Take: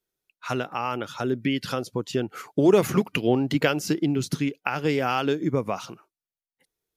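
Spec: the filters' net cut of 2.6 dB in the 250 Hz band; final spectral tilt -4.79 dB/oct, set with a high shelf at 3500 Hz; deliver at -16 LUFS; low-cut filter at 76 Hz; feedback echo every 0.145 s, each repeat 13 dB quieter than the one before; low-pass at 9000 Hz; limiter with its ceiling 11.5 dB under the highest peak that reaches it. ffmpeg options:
-af "highpass=76,lowpass=9k,equalizer=f=250:t=o:g=-3.5,highshelf=f=3.5k:g=4,alimiter=limit=-18dB:level=0:latency=1,aecho=1:1:145|290|435:0.224|0.0493|0.0108,volume=14dB"

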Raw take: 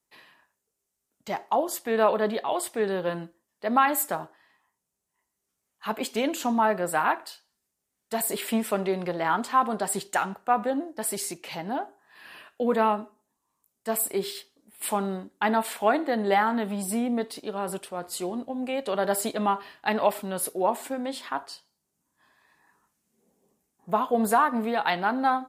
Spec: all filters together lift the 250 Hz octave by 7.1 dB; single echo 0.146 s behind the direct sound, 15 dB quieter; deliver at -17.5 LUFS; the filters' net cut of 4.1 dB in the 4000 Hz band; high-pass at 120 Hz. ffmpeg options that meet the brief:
-af "highpass=120,equalizer=f=250:t=o:g=8.5,equalizer=f=4k:t=o:g=-5.5,aecho=1:1:146:0.178,volume=7dB"

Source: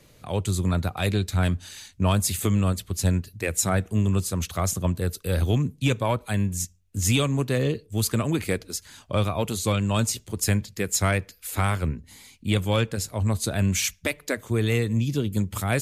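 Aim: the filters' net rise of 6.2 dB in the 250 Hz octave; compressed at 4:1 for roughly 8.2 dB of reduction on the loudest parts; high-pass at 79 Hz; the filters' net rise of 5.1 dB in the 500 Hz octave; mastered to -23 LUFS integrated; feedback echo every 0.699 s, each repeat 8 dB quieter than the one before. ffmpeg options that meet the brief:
-af "highpass=79,equalizer=f=250:t=o:g=7.5,equalizer=f=500:t=o:g=4,acompressor=threshold=-24dB:ratio=4,aecho=1:1:699|1398|2097|2796|3495:0.398|0.159|0.0637|0.0255|0.0102,volume=5dB"

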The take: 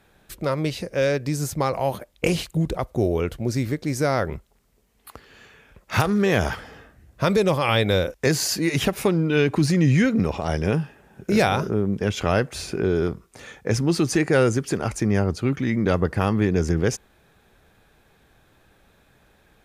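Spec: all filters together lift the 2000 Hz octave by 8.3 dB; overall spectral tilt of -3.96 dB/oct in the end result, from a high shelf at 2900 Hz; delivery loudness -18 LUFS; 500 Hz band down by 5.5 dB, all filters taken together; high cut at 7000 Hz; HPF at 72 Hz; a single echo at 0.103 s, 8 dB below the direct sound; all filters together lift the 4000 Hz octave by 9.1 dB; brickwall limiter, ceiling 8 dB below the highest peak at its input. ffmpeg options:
-af "highpass=72,lowpass=7k,equalizer=f=500:t=o:g=-7.5,equalizer=f=2k:t=o:g=7.5,highshelf=f=2.9k:g=6,equalizer=f=4k:t=o:g=5,alimiter=limit=-7.5dB:level=0:latency=1,aecho=1:1:103:0.398,volume=3.5dB"

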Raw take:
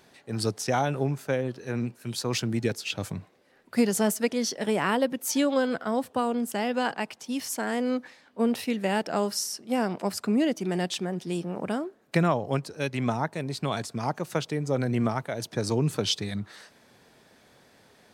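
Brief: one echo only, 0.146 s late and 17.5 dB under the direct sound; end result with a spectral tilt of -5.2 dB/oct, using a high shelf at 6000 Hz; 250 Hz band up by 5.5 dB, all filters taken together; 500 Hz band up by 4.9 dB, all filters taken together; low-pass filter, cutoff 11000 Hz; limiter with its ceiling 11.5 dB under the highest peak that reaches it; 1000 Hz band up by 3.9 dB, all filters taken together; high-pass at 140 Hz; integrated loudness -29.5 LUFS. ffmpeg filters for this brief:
-af "highpass=140,lowpass=11k,equalizer=f=250:t=o:g=6,equalizer=f=500:t=o:g=3.5,equalizer=f=1k:t=o:g=3.5,highshelf=f=6k:g=-3,alimiter=limit=-18dB:level=0:latency=1,aecho=1:1:146:0.133,volume=-1dB"

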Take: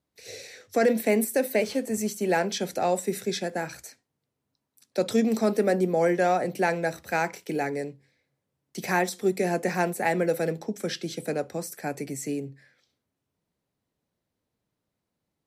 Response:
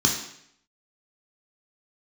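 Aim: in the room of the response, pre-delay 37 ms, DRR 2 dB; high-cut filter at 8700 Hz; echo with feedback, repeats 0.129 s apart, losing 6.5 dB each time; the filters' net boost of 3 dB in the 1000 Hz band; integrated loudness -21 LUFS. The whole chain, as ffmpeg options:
-filter_complex "[0:a]lowpass=8.7k,equalizer=f=1k:t=o:g=4.5,aecho=1:1:129|258|387|516|645|774:0.473|0.222|0.105|0.0491|0.0231|0.0109,asplit=2[a][b];[1:a]atrim=start_sample=2205,adelay=37[c];[b][c]afir=irnorm=-1:irlink=0,volume=-15dB[d];[a][d]amix=inputs=2:normalize=0"

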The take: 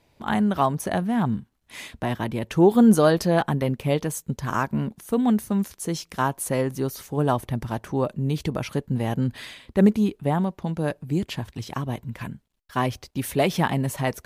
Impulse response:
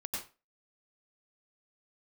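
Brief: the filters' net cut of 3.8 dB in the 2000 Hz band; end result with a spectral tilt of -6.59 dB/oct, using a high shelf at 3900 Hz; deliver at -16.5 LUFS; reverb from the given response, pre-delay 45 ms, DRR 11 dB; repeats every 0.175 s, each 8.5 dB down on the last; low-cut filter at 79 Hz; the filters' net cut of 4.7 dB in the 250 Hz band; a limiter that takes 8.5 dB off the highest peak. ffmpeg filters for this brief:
-filter_complex "[0:a]highpass=79,equalizer=f=250:t=o:g=-6,equalizer=f=2k:t=o:g=-4,highshelf=f=3.9k:g=-4,alimiter=limit=-16.5dB:level=0:latency=1,aecho=1:1:175|350|525|700:0.376|0.143|0.0543|0.0206,asplit=2[a][b];[1:a]atrim=start_sample=2205,adelay=45[c];[b][c]afir=irnorm=-1:irlink=0,volume=-12.5dB[d];[a][d]amix=inputs=2:normalize=0,volume=12dB"

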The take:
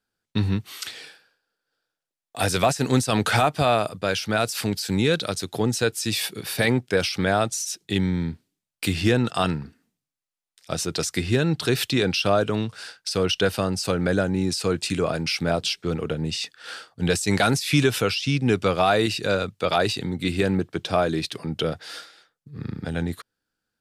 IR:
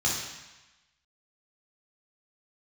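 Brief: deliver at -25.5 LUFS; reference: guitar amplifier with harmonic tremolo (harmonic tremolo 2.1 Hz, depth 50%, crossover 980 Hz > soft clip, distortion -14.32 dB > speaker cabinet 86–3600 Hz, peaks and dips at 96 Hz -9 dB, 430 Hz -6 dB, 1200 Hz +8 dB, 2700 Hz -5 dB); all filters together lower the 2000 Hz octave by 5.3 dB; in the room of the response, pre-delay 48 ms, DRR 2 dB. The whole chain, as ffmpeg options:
-filter_complex "[0:a]equalizer=f=2k:t=o:g=-8,asplit=2[a][b];[1:a]atrim=start_sample=2205,adelay=48[c];[b][c]afir=irnorm=-1:irlink=0,volume=-12dB[d];[a][d]amix=inputs=2:normalize=0,acrossover=split=980[e][f];[e]aeval=exprs='val(0)*(1-0.5/2+0.5/2*cos(2*PI*2.1*n/s))':c=same[g];[f]aeval=exprs='val(0)*(1-0.5/2-0.5/2*cos(2*PI*2.1*n/s))':c=same[h];[g][h]amix=inputs=2:normalize=0,asoftclip=threshold=-17dB,highpass=86,equalizer=f=96:t=q:w=4:g=-9,equalizer=f=430:t=q:w=4:g=-6,equalizer=f=1.2k:t=q:w=4:g=8,equalizer=f=2.7k:t=q:w=4:g=-5,lowpass=f=3.6k:w=0.5412,lowpass=f=3.6k:w=1.3066,volume=2.5dB"

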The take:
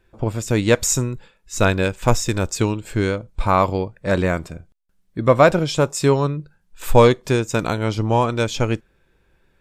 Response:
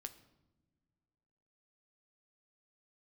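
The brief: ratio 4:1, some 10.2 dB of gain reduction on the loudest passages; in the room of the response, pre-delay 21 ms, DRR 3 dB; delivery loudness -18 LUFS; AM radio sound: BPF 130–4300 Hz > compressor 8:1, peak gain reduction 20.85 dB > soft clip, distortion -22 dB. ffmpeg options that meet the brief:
-filter_complex "[0:a]acompressor=threshold=-19dB:ratio=4,asplit=2[a][b];[1:a]atrim=start_sample=2205,adelay=21[c];[b][c]afir=irnorm=-1:irlink=0,volume=2dB[d];[a][d]amix=inputs=2:normalize=0,highpass=130,lowpass=4.3k,acompressor=threshold=-36dB:ratio=8,asoftclip=threshold=-27dB,volume=23dB"

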